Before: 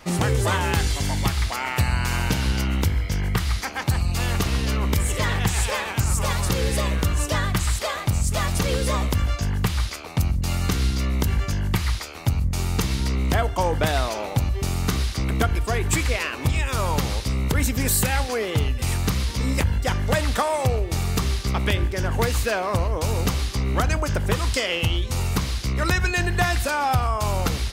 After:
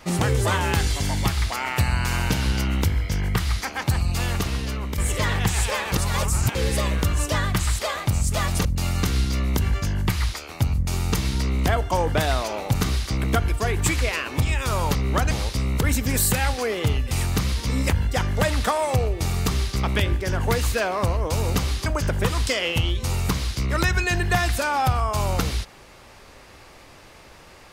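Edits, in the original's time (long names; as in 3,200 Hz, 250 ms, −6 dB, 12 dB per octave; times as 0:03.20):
0:04.12–0:04.98: fade out, to −8 dB
0:05.92–0:06.55: reverse
0:08.65–0:10.31: remove
0:14.41–0:14.82: remove
0:23.57–0:23.93: move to 0:17.02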